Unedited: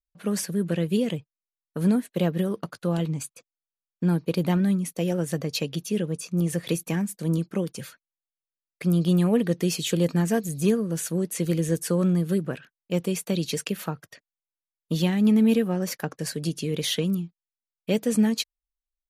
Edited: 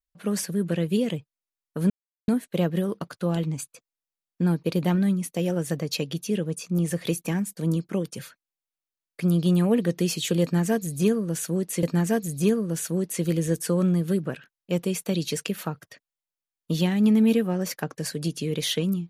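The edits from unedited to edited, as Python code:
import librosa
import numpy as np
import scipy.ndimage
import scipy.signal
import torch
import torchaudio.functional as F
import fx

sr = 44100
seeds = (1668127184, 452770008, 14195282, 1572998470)

y = fx.edit(x, sr, fx.insert_silence(at_s=1.9, length_s=0.38),
    fx.repeat(start_s=10.04, length_s=1.41, count=2), tone=tone)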